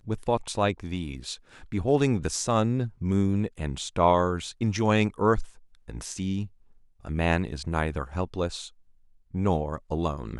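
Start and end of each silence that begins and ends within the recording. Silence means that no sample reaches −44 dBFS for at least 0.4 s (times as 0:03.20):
0:06.48–0:07.04
0:08.69–0:09.34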